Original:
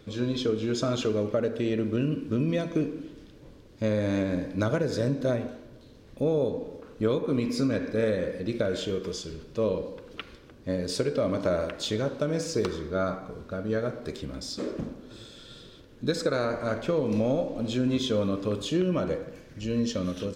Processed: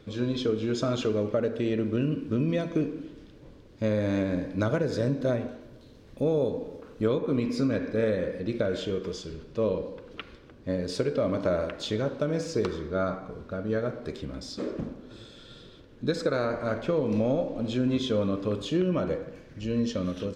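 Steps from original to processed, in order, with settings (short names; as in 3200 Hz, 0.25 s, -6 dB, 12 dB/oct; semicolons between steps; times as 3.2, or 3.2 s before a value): high shelf 6600 Hz -8 dB, from 5.61 s -2 dB, from 7.08 s -11.5 dB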